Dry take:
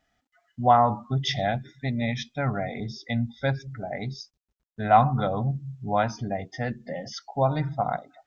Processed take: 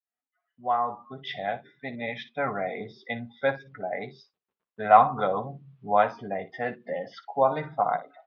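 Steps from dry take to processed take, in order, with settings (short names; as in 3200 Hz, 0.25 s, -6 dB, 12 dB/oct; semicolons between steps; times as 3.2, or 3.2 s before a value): opening faded in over 2.47 s; speaker cabinet 260–3300 Hz, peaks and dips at 290 Hz -4 dB, 450 Hz +5 dB, 1100 Hz +6 dB; early reflections 11 ms -8 dB, 58 ms -15 dB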